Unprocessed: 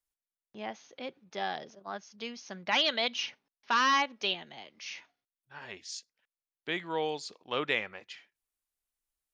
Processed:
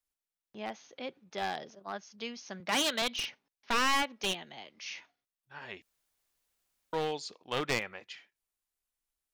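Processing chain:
wavefolder on the positive side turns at −29.5 dBFS
0:02.60–0:03.02: high-pass filter 150 Hz 24 dB per octave
0:05.82–0:06.93: fill with room tone

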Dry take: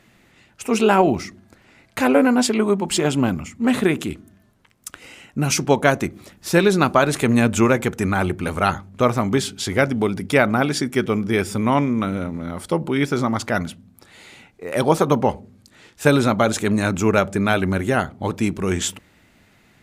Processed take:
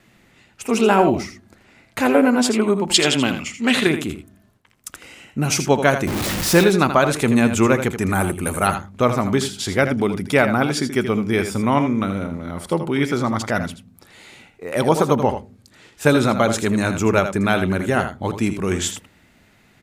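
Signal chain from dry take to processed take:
0:06.07–0:06.64: converter with a step at zero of −18 dBFS
0:08.12–0:08.67: high shelf with overshoot 6,600 Hz +12 dB, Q 1.5
noise gate with hold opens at −50 dBFS
0:02.94–0:03.87: meter weighting curve D
single-tap delay 81 ms −9.5 dB

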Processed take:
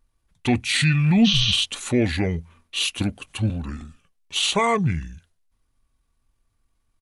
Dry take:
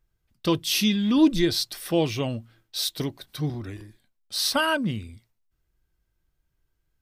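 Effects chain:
pitch vibrato 0.82 Hz 7.9 cents
in parallel at +3 dB: brickwall limiter −17.5 dBFS, peak gain reduction 9 dB
on the sum: healed spectral selection 0:01.28–0:01.54, 300–9,000 Hz after
pitch shifter −5.5 semitones
level −2.5 dB

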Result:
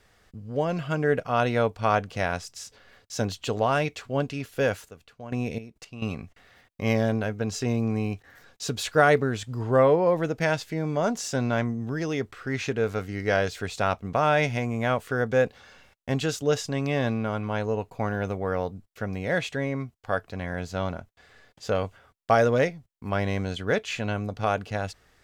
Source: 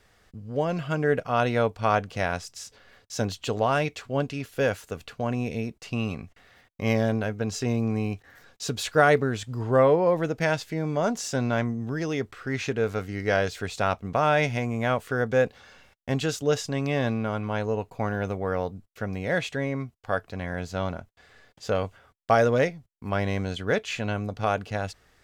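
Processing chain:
0:04.79–0:06.16: gate pattern "..x..xxx.....xxx" 172 BPM −12 dB

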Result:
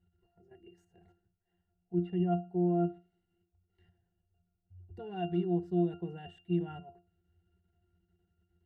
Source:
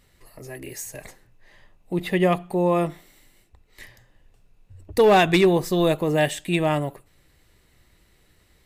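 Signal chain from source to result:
output level in coarse steps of 12 dB
resonances in every octave F, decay 0.19 s

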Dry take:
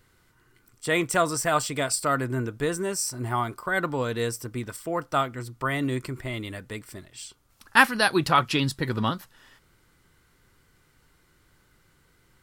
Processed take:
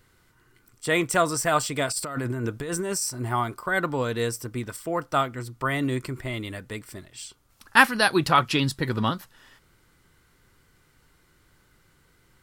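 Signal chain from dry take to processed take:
0:01.88–0:03.02: compressor whose output falls as the input rises −30 dBFS, ratio −1
level +1 dB

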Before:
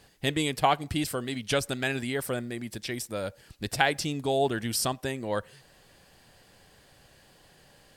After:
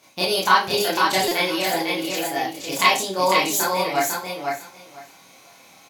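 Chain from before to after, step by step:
high-pass filter 86 Hz 12 dB per octave
high-shelf EQ 8,300 Hz −4.5 dB
notch filter 930 Hz, Q 25
four-comb reverb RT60 0.36 s, combs from 29 ms, DRR −6.5 dB
wrong playback speed 33 rpm record played at 45 rpm
low-shelf EQ 300 Hz −9.5 dB
repeating echo 500 ms, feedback 16%, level −4 dB
buffer that repeats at 0:01.28, samples 128, times 10
level +1.5 dB

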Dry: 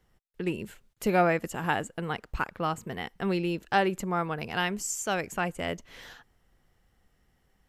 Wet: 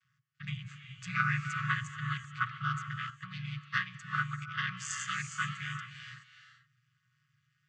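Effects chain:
channel vocoder with a chord as carrier minor triad, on B2
linear-phase brick-wall band-stop 160–1,100 Hz
low-shelf EQ 410 Hz −10 dB
reverb whose tail is shaped and stops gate 450 ms rising, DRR 6.5 dB
0:03.10–0:04.69: expander for the loud parts 1.5 to 1, over −51 dBFS
level +8 dB

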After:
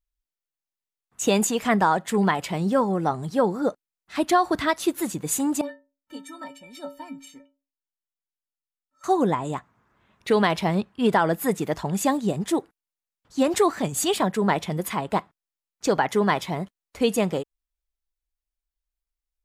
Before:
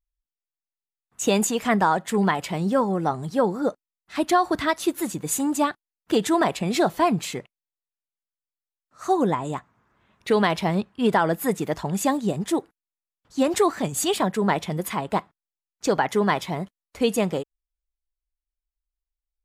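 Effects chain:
0:05.61–0:09.04: stiff-string resonator 270 Hz, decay 0.35 s, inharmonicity 0.03

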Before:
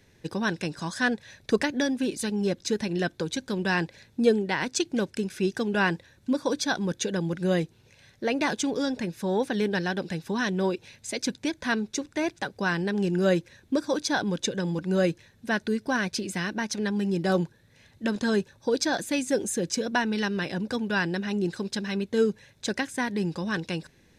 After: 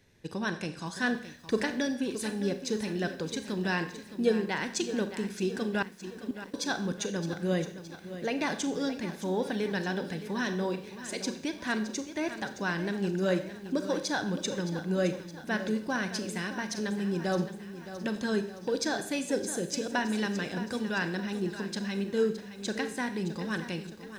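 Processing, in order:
four-comb reverb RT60 0.58 s, combs from 29 ms, DRR 9 dB
0:05.82–0:06.54: gate with flip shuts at −19 dBFS, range −27 dB
feedback echo at a low word length 617 ms, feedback 55%, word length 8 bits, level −12 dB
level −5 dB

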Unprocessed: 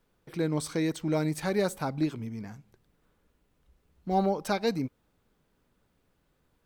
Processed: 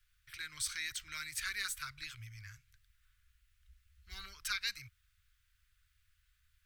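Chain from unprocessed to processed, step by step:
inverse Chebyshev band-stop filter 160–860 Hz, stop band 40 dB
level +1.5 dB

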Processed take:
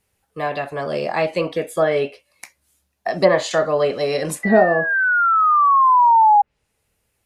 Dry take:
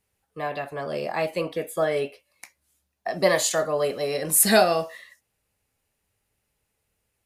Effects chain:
sound drawn into the spectrogram fall, 0:04.43–0:06.42, 810–2,000 Hz −16 dBFS
treble cut that deepens with the level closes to 790 Hz, closed at −13 dBFS
level +6 dB

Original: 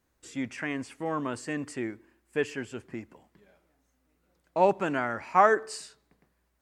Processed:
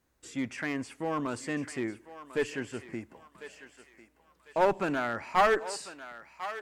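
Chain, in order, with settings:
asymmetric clip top −23.5 dBFS
on a send: feedback echo with a high-pass in the loop 1,048 ms, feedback 44%, high-pass 800 Hz, level −11 dB

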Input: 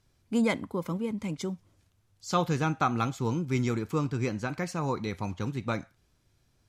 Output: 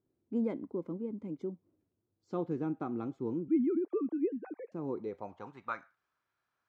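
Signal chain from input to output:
0:03.48–0:04.72: three sine waves on the formant tracks
band-pass filter sweep 330 Hz → 1,300 Hz, 0:04.89–0:05.75

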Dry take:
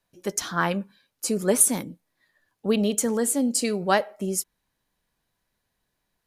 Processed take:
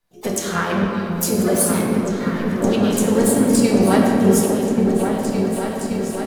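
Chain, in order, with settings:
camcorder AGC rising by 52 dB per second
echo whose low-pass opens from repeat to repeat 566 ms, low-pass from 400 Hz, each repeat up 2 octaves, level −3 dB
rectangular room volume 150 cubic metres, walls hard, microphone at 0.54 metres
pitch-shifted copies added −12 semitones −17 dB, +3 semitones −7 dB, +12 semitones −17 dB
level −4 dB

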